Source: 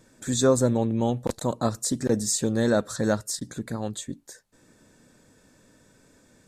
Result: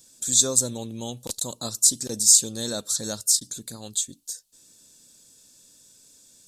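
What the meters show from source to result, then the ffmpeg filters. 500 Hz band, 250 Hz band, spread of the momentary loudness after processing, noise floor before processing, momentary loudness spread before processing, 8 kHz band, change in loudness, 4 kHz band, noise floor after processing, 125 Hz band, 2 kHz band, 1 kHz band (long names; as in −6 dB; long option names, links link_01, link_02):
−10.0 dB, −10.0 dB, 20 LU, −60 dBFS, 12 LU, +11.5 dB, +4.5 dB, +9.0 dB, −58 dBFS, −10.0 dB, −10.5 dB, −10.0 dB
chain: -af "aexciter=amount=11:drive=2.8:freq=2900,volume=-10dB"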